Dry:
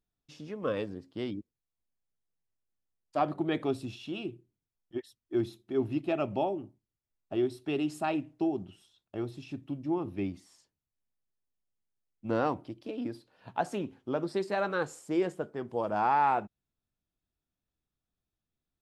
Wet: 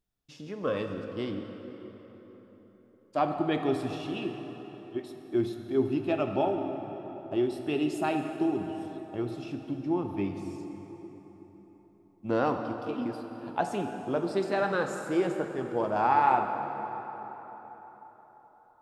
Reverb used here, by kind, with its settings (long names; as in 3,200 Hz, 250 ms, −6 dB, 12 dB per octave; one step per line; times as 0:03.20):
dense smooth reverb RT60 4.4 s, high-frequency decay 0.6×, DRR 4.5 dB
level +1.5 dB